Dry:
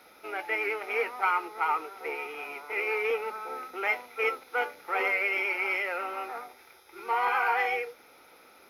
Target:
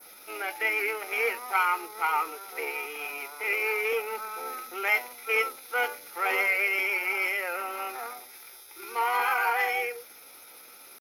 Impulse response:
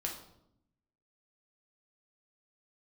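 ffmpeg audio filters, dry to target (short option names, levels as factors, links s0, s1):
-af "atempo=0.79,adynamicequalizer=threshold=0.00891:dfrequency=3400:dqfactor=0.84:tfrequency=3400:tqfactor=0.84:attack=5:release=100:ratio=0.375:range=2:mode=cutabove:tftype=bell,crystalizer=i=4:c=0,volume=0.891"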